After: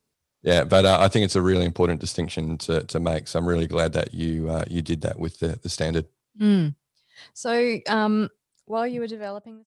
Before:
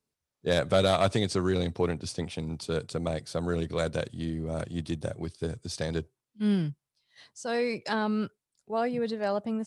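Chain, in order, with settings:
fade-out on the ending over 1.30 s
level +7 dB

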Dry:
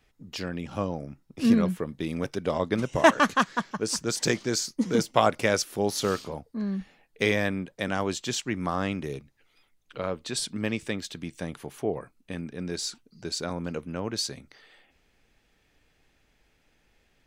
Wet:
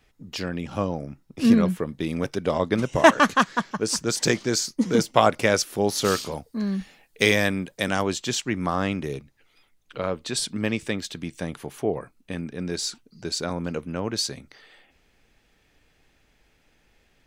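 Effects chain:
0:06.04–0:08.01: high-shelf EQ 2,700 Hz → 4,600 Hz +10.5 dB
level +3.5 dB

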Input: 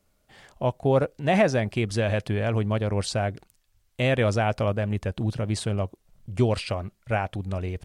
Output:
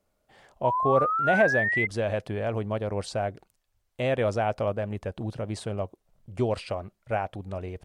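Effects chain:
parametric band 640 Hz +7.5 dB 2.2 octaves
sound drawn into the spectrogram rise, 0:00.64–0:01.87, 930–2,100 Hz −18 dBFS
level −8 dB

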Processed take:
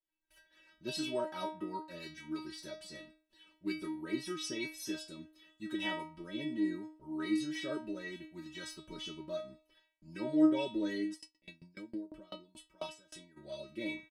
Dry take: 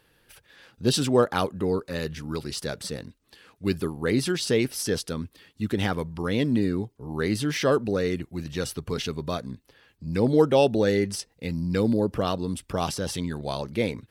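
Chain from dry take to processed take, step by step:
noise gate with hold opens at −43 dBFS
high-shelf EQ 6,900 Hz −9 dB
comb filter 5.3 ms, depth 78%
rotating-speaker cabinet horn 6.7 Hz, later 0.7 Hz, at 0:04.30
stiff-string resonator 310 Hz, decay 0.4 s, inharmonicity 0.002
0:11.13–0:13.36: tremolo with a ramp in dB decaying 9 Hz → 2.6 Hz, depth 27 dB
level +7.5 dB

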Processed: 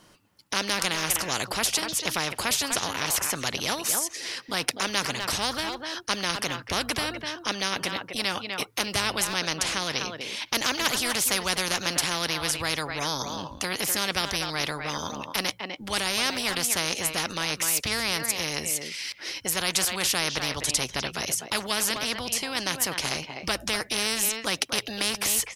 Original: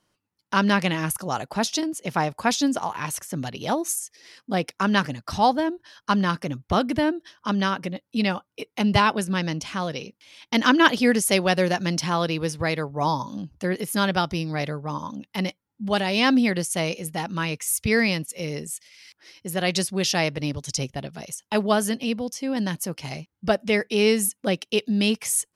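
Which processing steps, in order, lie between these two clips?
hum removal 56.63 Hz, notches 2
far-end echo of a speakerphone 250 ms, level −15 dB
every bin compressed towards the loudest bin 4 to 1

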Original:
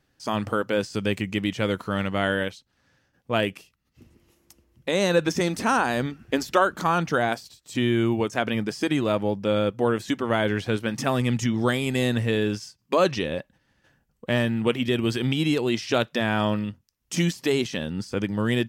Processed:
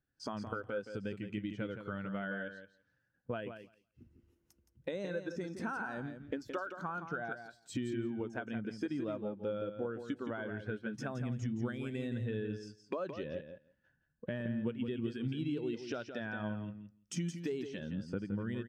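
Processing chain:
parametric band 1,500 Hz +6.5 dB 0.28 octaves
downward compressor 10 to 1, threshold −35 dBFS, peak gain reduction 21.5 dB
repeating echo 169 ms, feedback 21%, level −6 dB
every bin expanded away from the loudest bin 1.5 to 1
level −4 dB

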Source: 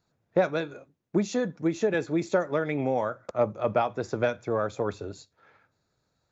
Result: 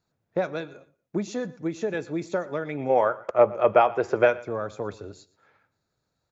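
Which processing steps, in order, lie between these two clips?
gain on a spectral selection 0:02.90–0:04.40, 330–3,300 Hz +10 dB
repeating echo 119 ms, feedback 25%, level −20 dB
level −3 dB

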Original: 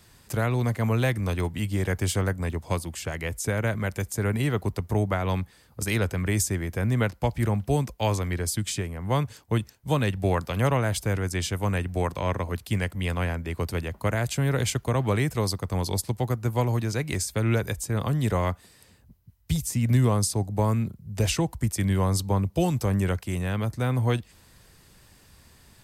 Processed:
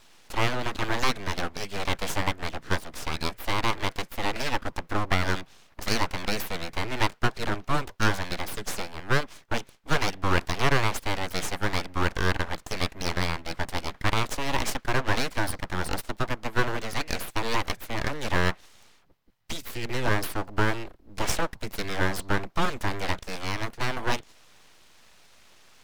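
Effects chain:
three-way crossover with the lows and the highs turned down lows −17 dB, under 380 Hz, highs −18 dB, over 4,800 Hz
full-wave rectification
level +7.5 dB

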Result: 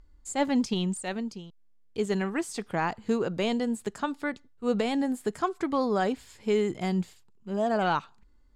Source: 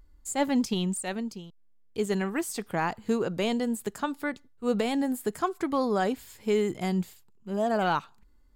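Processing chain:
low-pass filter 7,700 Hz 12 dB per octave

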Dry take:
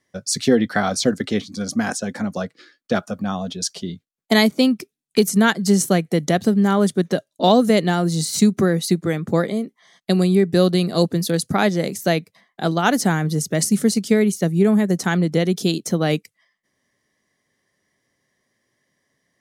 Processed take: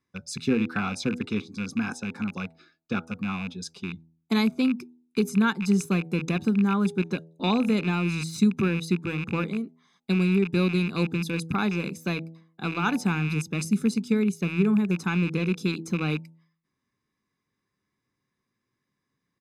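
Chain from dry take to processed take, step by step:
loose part that buzzes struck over −27 dBFS, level −16 dBFS
high-shelf EQ 5,300 Hz −11.5 dB
comb filter 0.8 ms, depth 76%
hum removal 81.64 Hz, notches 11
level −9 dB

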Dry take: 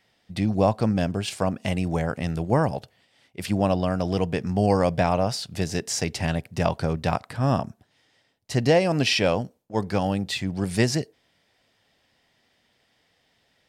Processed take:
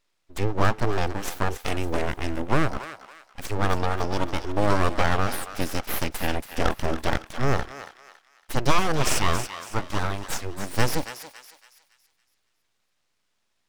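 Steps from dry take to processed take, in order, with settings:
noise reduction from a noise print of the clip's start 9 dB
full-wave rectification
on a send: feedback echo with a high-pass in the loop 279 ms, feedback 41%, high-pass 1,000 Hz, level −9 dB
on the sum: pitch-shifted copies added −12 semitones −16 dB
level +2 dB

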